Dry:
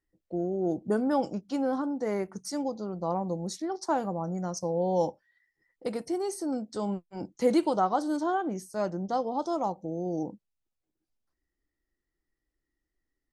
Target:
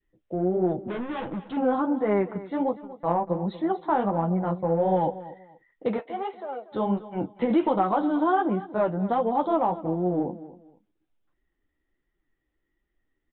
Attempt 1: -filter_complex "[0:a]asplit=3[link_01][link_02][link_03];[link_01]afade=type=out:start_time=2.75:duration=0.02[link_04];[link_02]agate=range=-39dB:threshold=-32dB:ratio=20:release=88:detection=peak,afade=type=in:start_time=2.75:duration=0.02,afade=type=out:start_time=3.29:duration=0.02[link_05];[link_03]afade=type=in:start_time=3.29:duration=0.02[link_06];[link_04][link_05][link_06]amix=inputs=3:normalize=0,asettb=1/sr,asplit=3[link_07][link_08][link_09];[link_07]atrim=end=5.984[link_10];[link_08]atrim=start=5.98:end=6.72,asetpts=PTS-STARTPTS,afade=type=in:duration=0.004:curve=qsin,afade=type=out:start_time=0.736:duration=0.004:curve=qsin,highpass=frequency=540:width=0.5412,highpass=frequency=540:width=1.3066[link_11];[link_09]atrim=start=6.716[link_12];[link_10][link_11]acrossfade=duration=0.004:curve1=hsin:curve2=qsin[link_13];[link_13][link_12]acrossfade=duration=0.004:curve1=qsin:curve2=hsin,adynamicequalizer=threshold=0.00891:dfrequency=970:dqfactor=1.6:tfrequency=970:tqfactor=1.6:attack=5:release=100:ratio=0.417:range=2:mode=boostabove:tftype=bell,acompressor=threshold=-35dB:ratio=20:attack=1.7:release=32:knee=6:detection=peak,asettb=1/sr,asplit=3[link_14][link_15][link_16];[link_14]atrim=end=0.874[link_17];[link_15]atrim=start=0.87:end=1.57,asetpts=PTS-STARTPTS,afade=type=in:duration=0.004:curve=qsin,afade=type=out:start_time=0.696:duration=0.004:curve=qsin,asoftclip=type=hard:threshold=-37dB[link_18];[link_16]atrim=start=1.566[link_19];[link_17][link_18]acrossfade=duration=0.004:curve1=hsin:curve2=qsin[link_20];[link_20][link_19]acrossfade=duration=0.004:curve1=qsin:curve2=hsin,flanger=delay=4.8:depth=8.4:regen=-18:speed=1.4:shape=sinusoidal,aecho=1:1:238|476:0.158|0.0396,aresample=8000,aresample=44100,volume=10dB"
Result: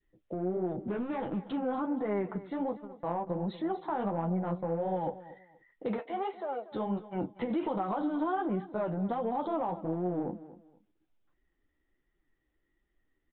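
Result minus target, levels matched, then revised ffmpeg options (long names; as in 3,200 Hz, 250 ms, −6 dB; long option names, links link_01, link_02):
downward compressor: peak gain reduction +10.5 dB
-filter_complex "[0:a]asplit=3[link_01][link_02][link_03];[link_01]afade=type=out:start_time=2.75:duration=0.02[link_04];[link_02]agate=range=-39dB:threshold=-32dB:ratio=20:release=88:detection=peak,afade=type=in:start_time=2.75:duration=0.02,afade=type=out:start_time=3.29:duration=0.02[link_05];[link_03]afade=type=in:start_time=3.29:duration=0.02[link_06];[link_04][link_05][link_06]amix=inputs=3:normalize=0,asettb=1/sr,asplit=3[link_07][link_08][link_09];[link_07]atrim=end=5.984[link_10];[link_08]atrim=start=5.98:end=6.72,asetpts=PTS-STARTPTS,afade=type=in:duration=0.004:curve=qsin,afade=type=out:start_time=0.736:duration=0.004:curve=qsin,highpass=frequency=540:width=0.5412,highpass=frequency=540:width=1.3066[link_11];[link_09]atrim=start=6.716[link_12];[link_10][link_11]acrossfade=duration=0.004:curve1=hsin:curve2=qsin[link_13];[link_13][link_12]acrossfade=duration=0.004:curve1=qsin:curve2=hsin,adynamicequalizer=threshold=0.00891:dfrequency=970:dqfactor=1.6:tfrequency=970:tqfactor=1.6:attack=5:release=100:ratio=0.417:range=2:mode=boostabove:tftype=bell,acompressor=threshold=-24dB:ratio=20:attack=1.7:release=32:knee=6:detection=peak,asettb=1/sr,asplit=3[link_14][link_15][link_16];[link_14]atrim=end=0.874[link_17];[link_15]atrim=start=0.87:end=1.57,asetpts=PTS-STARTPTS,afade=type=in:duration=0.004:curve=qsin,afade=type=out:start_time=0.696:duration=0.004:curve=qsin,asoftclip=type=hard:threshold=-37dB[link_18];[link_16]atrim=start=1.566[link_19];[link_17][link_18]acrossfade=duration=0.004:curve1=hsin:curve2=qsin[link_20];[link_20][link_19]acrossfade=duration=0.004:curve1=qsin:curve2=hsin,flanger=delay=4.8:depth=8.4:regen=-18:speed=1.4:shape=sinusoidal,aecho=1:1:238|476:0.158|0.0396,aresample=8000,aresample=44100,volume=10dB"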